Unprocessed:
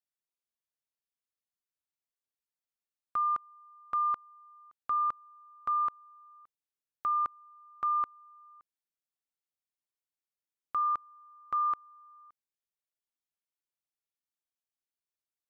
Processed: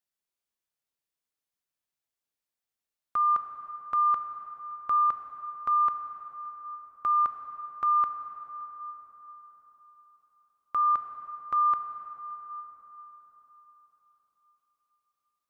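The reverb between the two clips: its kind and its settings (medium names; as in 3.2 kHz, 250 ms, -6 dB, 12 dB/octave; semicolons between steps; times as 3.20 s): plate-style reverb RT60 4.7 s, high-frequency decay 0.55×, DRR 6.5 dB; trim +3 dB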